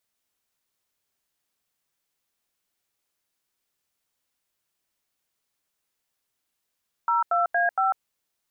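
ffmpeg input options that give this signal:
-f lavfi -i "aevalsrc='0.0794*clip(min(mod(t,0.232),0.147-mod(t,0.232))/0.002,0,1)*(eq(floor(t/0.232),0)*(sin(2*PI*941*mod(t,0.232))+sin(2*PI*1336*mod(t,0.232)))+eq(floor(t/0.232),1)*(sin(2*PI*697*mod(t,0.232))+sin(2*PI*1336*mod(t,0.232)))+eq(floor(t/0.232),2)*(sin(2*PI*697*mod(t,0.232))+sin(2*PI*1633*mod(t,0.232)))+eq(floor(t/0.232),3)*(sin(2*PI*770*mod(t,0.232))+sin(2*PI*1336*mod(t,0.232))))':d=0.928:s=44100"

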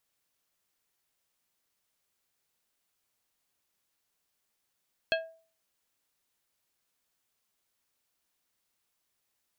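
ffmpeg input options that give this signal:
-f lavfi -i "aevalsrc='0.0631*pow(10,-3*t/0.42)*sin(2*PI*652*t)+0.0531*pow(10,-3*t/0.221)*sin(2*PI*1630*t)+0.0447*pow(10,-3*t/0.159)*sin(2*PI*2608*t)+0.0376*pow(10,-3*t/0.136)*sin(2*PI*3260*t)+0.0316*pow(10,-3*t/0.113)*sin(2*PI*4238*t)':d=0.89:s=44100"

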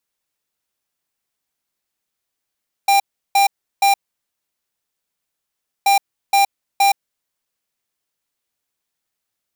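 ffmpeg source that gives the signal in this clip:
-f lavfi -i "aevalsrc='0.224*(2*lt(mod(795*t,1),0.5)-1)*clip(min(mod(mod(t,2.98),0.47),0.12-mod(mod(t,2.98),0.47))/0.005,0,1)*lt(mod(t,2.98),1.41)':d=5.96:s=44100"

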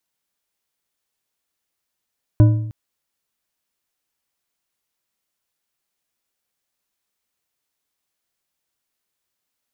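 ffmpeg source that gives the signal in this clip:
-f lavfi -i "aevalsrc='0.531*pow(10,-3*t/0.78)*sin(2*PI*111*t)+0.188*pow(10,-3*t/0.575)*sin(2*PI*306*t)+0.0668*pow(10,-3*t/0.47)*sin(2*PI*599.8*t)+0.0237*pow(10,-3*t/0.404)*sin(2*PI*991.6*t)+0.00841*pow(10,-3*t/0.359)*sin(2*PI*1480.7*t)':d=0.31:s=44100"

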